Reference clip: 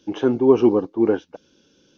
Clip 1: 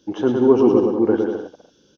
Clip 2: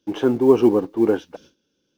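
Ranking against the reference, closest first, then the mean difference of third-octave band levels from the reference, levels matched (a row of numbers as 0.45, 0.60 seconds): 2, 1; 2.0, 3.5 decibels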